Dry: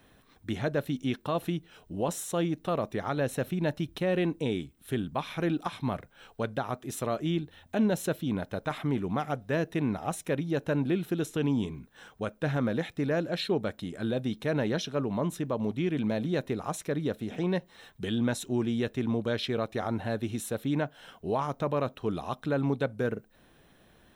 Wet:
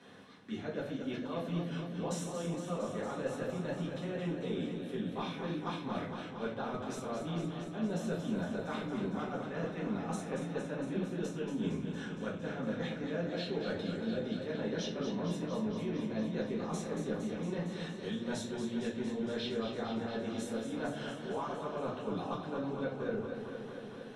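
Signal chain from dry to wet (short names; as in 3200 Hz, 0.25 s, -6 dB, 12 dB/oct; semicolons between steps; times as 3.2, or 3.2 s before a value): Chebyshev band-pass 180–6000 Hz, order 2; reverse; compressor 8:1, threshold -42 dBFS, peak gain reduction 19.5 dB; reverse; shoebox room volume 31 m³, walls mixed, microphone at 1.1 m; warbling echo 0.23 s, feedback 77%, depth 61 cents, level -7.5 dB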